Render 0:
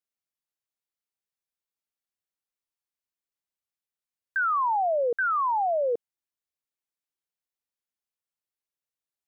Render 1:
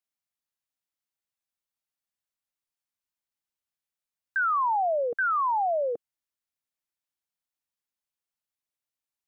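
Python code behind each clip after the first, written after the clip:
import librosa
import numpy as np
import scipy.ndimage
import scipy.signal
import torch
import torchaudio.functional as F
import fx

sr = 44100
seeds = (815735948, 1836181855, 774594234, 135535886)

y = fx.peak_eq(x, sr, hz=420.0, db=-9.0, octaves=0.36)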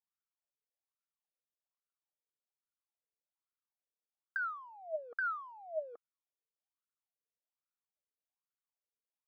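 y = scipy.signal.medfilt(x, 15)
y = fx.over_compress(y, sr, threshold_db=-30.0, ratio=-0.5)
y = fx.wah_lfo(y, sr, hz=1.2, low_hz=440.0, high_hz=1400.0, q=8.4)
y = y * librosa.db_to_amplitude(1.5)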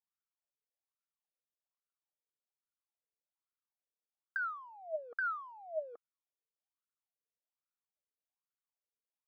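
y = x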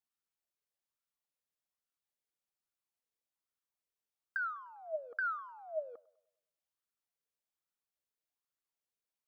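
y = fx.echo_wet_bandpass(x, sr, ms=100, feedback_pct=45, hz=940.0, wet_db=-21.5)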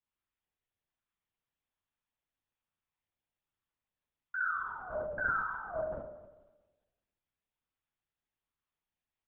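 y = fx.rev_spring(x, sr, rt60_s=1.2, pass_ms=(46,), chirp_ms=50, drr_db=-2.5)
y = fx.vibrato(y, sr, rate_hz=0.38, depth_cents=34.0)
y = fx.lpc_vocoder(y, sr, seeds[0], excitation='whisper', order=8)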